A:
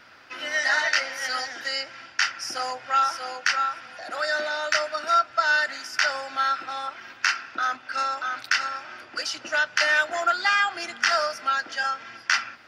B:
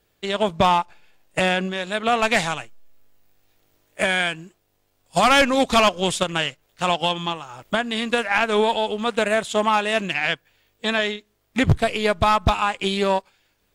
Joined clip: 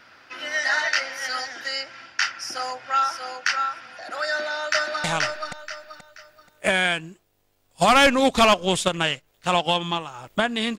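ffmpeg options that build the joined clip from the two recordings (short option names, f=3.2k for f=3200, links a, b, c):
-filter_complex "[0:a]apad=whole_dur=10.78,atrim=end=10.78,atrim=end=5.042[a];[1:a]atrim=start=2.388:end=8.13[b];[a][b]acrossfade=d=0.004:c1=hsin:c2=hsin,asplit=2[c][d];[d]afade=t=in:st=4.26:d=0.01,afade=t=out:st=5.04:d=0.01,aecho=0:1:480|960|1440|1920:0.794328|0.238298|0.0714895|0.0214469[e];[c][e]amix=inputs=2:normalize=0"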